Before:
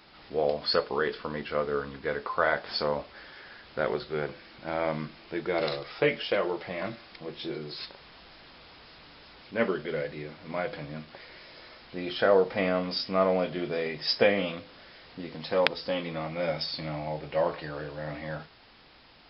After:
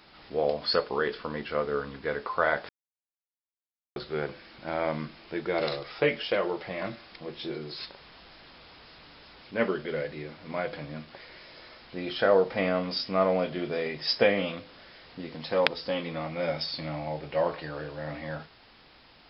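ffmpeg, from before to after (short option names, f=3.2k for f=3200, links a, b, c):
-filter_complex "[0:a]asplit=3[a][b][c];[a]atrim=end=2.69,asetpts=PTS-STARTPTS,afade=t=out:st=2.686:d=0.004:c=hsin[d];[b]atrim=start=2.69:end=3.96,asetpts=PTS-STARTPTS,volume=0[e];[c]atrim=start=3.96,asetpts=PTS-STARTPTS,afade=t=in:d=0.004:c=hsin[f];[d][e][f]concat=n=3:v=0:a=1"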